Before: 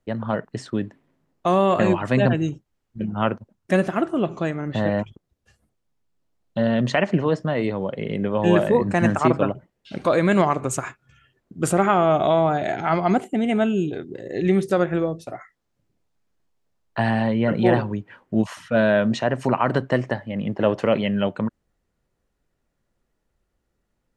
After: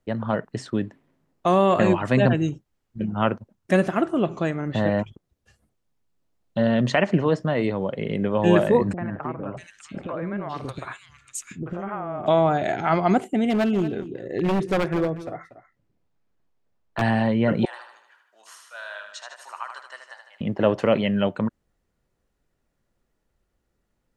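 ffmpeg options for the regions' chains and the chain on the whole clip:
-filter_complex "[0:a]asettb=1/sr,asplit=3[s0][s1][s2];[s0]atrim=end=8.934[s3];[s1]atrim=start=8.93:end=12.28,asetpts=PTS-STARTPTS,afade=t=in:d=0.004:c=qsin,afade=t=out:st=3.346:d=0.004:c=qsin,acompressor=threshold=0.0562:ratio=6:attack=3.2:release=140:knee=1:detection=peak,acrossover=split=480|2200[s4][s5][s6];[s5]adelay=40[s7];[s6]adelay=640[s8];[s4][s7][s8]amix=inputs=3:normalize=0,atrim=end_sample=147735[s9];[s2]atrim=start=12.276[s10];[s3][s9]acrossfade=d=0.004:c1=hsin:c2=qsin[s11];[s11][s10]acrossfade=d=0.004:c1=qsin:c2=hsin,asettb=1/sr,asplit=3[s12][s13][s14];[s12]atrim=end=13.494[s15];[s13]atrim=start=13.49:end=17.02,asetpts=PTS-STARTPTS,afade=t=in:d=0.004:c=qsin,afade=t=out:st=3.526:d=0.004:c=qsin,lowpass=f=2800:p=1,aeval=exprs='0.158*(abs(mod(val(0)/0.158+3,4)-2)-1)':c=same,aecho=1:1:237:0.188,atrim=end_sample=155673[s16];[s14]atrim=start=17.016[s17];[s15][s16]acrossfade=d=0.004:c1=hsin:c2=qsin[s18];[s18][s17]acrossfade=d=0.004:c1=qsin:c2=hsin,asettb=1/sr,asplit=3[s19][s20][s21];[s19]atrim=end=17.654[s22];[s20]atrim=start=17.65:end=20.41,asetpts=PTS-STARTPTS,afade=t=in:d=0.004:c=qsin,afade=t=out:st=2.756:d=0.004:c=qsin,highpass=f=1200:w=0.5412,highpass=f=1200:w=1.3066,equalizer=f=2200:t=o:w=1.8:g=-14,aecho=1:1:77|154|231|308|385|462|539:0.473|0.251|0.133|0.0704|0.0373|0.0198|0.0105,atrim=end_sample=121716[s23];[s21]atrim=start=20.406[s24];[s22][s23]acrossfade=d=0.004:c1=hsin:c2=qsin[s25];[s25][s24]acrossfade=d=0.004:c1=qsin:c2=hsin"

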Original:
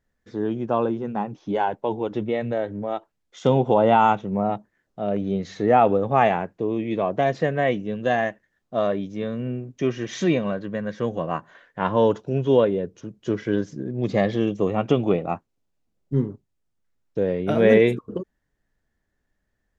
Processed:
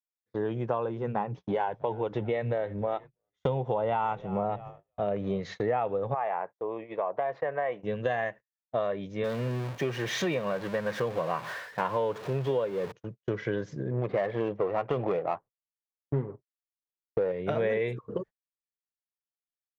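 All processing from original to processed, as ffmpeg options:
-filter_complex "[0:a]asettb=1/sr,asplit=3[s0][s1][s2];[s0]atrim=end=1.054[s3];[s1]atrim=start=1.05:end=5.4,asetpts=PTS-STARTPTS,afade=t=in:d=0.004:c=qsin,afade=t=out:st=4.346:d=0.004:c=qsin,lowshelf=f=330:g=2.5,asplit=5[s4][s5][s6][s7][s8];[s5]adelay=323,afreqshift=-57,volume=0.0631[s9];[s6]adelay=646,afreqshift=-114,volume=0.0398[s10];[s7]adelay=969,afreqshift=-171,volume=0.0251[s11];[s8]adelay=1292,afreqshift=-228,volume=0.0158[s12];[s4][s9][s10][s11][s12]amix=inputs=5:normalize=0,atrim=end_sample=191835[s13];[s2]atrim=start=5.396[s14];[s3][s13]acrossfade=d=0.004:c1=hsin:c2=qsin[s15];[s15][s14]acrossfade=d=0.004:c1=qsin:c2=hsin,asettb=1/sr,asplit=3[s16][s17][s18];[s16]atrim=end=6.144[s19];[s17]atrim=start=6.14:end=7.83,asetpts=PTS-STARTPTS,afade=t=in:d=0.004:c=qsin,afade=t=out:st=1.686:d=0.004:c=qsin,bandpass=f=890:t=q:w=1.3,acompressor=threshold=0.0708:ratio=2.5:attack=3.2:release=140:knee=1:detection=peak[s20];[s18]atrim=start=7.826[s21];[s19][s20]acrossfade=d=0.004:c1=hsin:c2=qsin[s22];[s22][s21]acrossfade=d=0.004:c1=qsin:c2=hsin,asettb=1/sr,asplit=3[s23][s24][s25];[s23]atrim=end=9.244[s26];[s24]atrim=start=9.24:end=12.92,asetpts=PTS-STARTPTS,afade=t=in:d=0.004:c=qsin,afade=t=out:st=3.676:d=0.004:c=qsin,aeval=exprs='val(0)+0.5*0.0251*sgn(val(0))':c=same,highpass=f=130:p=1,bandreject=f=2000:w=22[s27];[s25]atrim=start=12.916[s28];[s26][s27]acrossfade=d=0.004:c1=hsin:c2=qsin[s29];[s29][s28]acrossfade=d=0.004:c1=qsin:c2=hsin,asettb=1/sr,asplit=3[s30][s31][s32];[s30]atrim=end=13.914[s33];[s31]atrim=start=13.91:end=17.32,asetpts=PTS-STARTPTS,afade=t=in:d=0.004:c=qsin,afade=t=out:st=3.406:d=0.004:c=qsin,aphaser=in_gain=1:out_gain=1:delay=3.2:decay=0.28:speed=1.8:type=sinusoidal,adynamicsmooth=sensitivity=6:basefreq=1200,asplit=2[s34][s35];[s35]highpass=f=720:p=1,volume=5.62,asoftclip=type=tanh:threshold=0.531[s36];[s34][s36]amix=inputs=2:normalize=0,lowpass=f=1100:p=1,volume=0.501[s37];[s32]atrim=start=17.316[s38];[s33][s37]acrossfade=d=0.004:c1=hsin:c2=qsin[s39];[s39][s38]acrossfade=d=0.004:c1=qsin:c2=hsin,agate=range=0.0112:threshold=0.0141:ratio=16:detection=peak,equalizer=f=125:t=o:w=1:g=11,equalizer=f=250:t=o:w=1:g=-4,equalizer=f=500:t=o:w=1:g=9,equalizer=f=1000:t=o:w=1:g=8,equalizer=f=2000:t=o:w=1:g=9,equalizer=f=4000:t=o:w=1:g=5,acompressor=threshold=0.126:ratio=6,volume=0.398"

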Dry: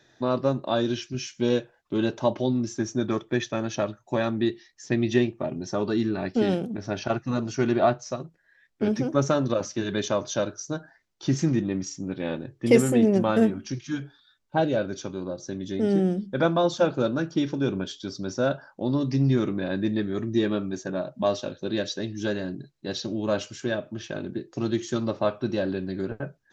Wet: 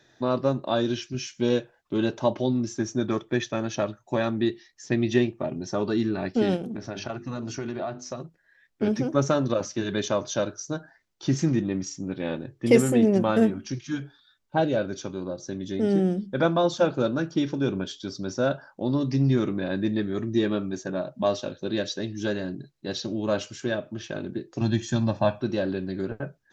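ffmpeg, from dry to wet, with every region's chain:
-filter_complex "[0:a]asettb=1/sr,asplit=3[s0][s1][s2];[s0]atrim=end=6.564[s3];[s1]atrim=start=6.56:end=8.23,asetpts=PTS-STARTPTS,afade=t=in:d=0.004:c=qsin,afade=t=out:st=1.666:d=0.004:c=qsin,bandreject=f=50:t=h:w=6,bandreject=f=100:t=h:w=6,bandreject=f=150:t=h:w=6,bandreject=f=200:t=h:w=6,bandreject=f=250:t=h:w=6,bandreject=f=300:t=h:w=6,bandreject=f=350:t=h:w=6,bandreject=f=400:t=h:w=6,acompressor=threshold=0.0398:ratio=5:attack=3.2:release=140:knee=1:detection=peak[s4];[s2]atrim=start=8.226[s5];[s3][s4]acrossfade=d=0.004:c1=hsin:c2=qsin[s6];[s6][s5]acrossfade=d=0.004:c1=qsin:c2=hsin,asettb=1/sr,asplit=3[s7][s8][s9];[s7]atrim=end=24.614[s10];[s8]atrim=start=24.61:end=25.41,asetpts=PTS-STARTPTS,afade=t=in:d=0.004:c=qsin,afade=t=out:st=0.796:d=0.004:c=qsin,lowshelf=f=180:g=6,aecho=1:1:1.2:0.72,atrim=end_sample=35280[s11];[s9]atrim=start=25.406[s12];[s10][s11]acrossfade=d=0.004:c1=hsin:c2=qsin[s13];[s13][s12]acrossfade=d=0.004:c1=qsin:c2=hsin"

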